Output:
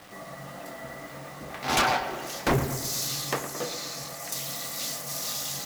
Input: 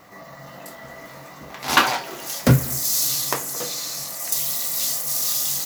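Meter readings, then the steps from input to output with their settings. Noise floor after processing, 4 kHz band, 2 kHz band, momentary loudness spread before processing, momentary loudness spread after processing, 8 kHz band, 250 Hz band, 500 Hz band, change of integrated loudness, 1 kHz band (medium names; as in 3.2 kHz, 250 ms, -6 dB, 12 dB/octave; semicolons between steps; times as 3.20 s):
-43 dBFS, -6.0 dB, -5.5 dB, 21 LU, 15 LU, -8.5 dB, -6.5 dB, -1.5 dB, -8.0 dB, -3.5 dB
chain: low-pass 2.6 kHz 6 dB/octave; band-stop 980 Hz, Q 10; wavefolder -16.5 dBFS; word length cut 8-bit, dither none; on a send: filtered feedback delay 113 ms, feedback 62%, low-pass 2 kHz, level -10.5 dB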